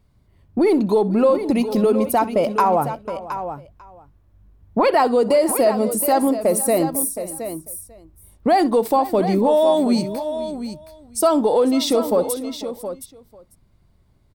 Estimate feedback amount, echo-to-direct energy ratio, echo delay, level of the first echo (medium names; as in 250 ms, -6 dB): no regular repeats, -9.0 dB, 63 ms, -19.5 dB